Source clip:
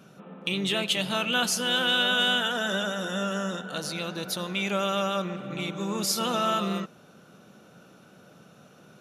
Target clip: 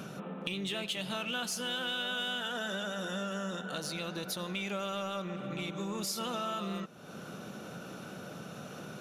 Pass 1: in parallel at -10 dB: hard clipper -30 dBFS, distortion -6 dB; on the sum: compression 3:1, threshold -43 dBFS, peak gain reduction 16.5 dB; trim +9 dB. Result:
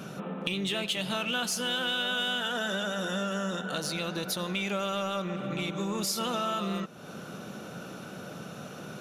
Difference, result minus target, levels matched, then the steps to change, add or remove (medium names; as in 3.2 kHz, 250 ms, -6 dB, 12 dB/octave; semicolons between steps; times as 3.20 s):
compression: peak gain reduction -5 dB
change: compression 3:1, threshold -50.5 dBFS, peak gain reduction 21.5 dB